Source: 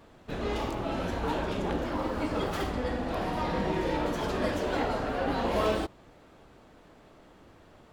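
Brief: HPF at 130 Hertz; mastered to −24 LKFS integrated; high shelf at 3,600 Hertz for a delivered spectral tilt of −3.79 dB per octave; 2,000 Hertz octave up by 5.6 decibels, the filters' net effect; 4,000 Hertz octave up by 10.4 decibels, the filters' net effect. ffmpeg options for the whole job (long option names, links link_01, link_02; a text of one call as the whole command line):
ffmpeg -i in.wav -af "highpass=130,equalizer=frequency=2000:width_type=o:gain=3.5,highshelf=frequency=3600:gain=6.5,equalizer=frequency=4000:width_type=o:gain=8,volume=5dB" out.wav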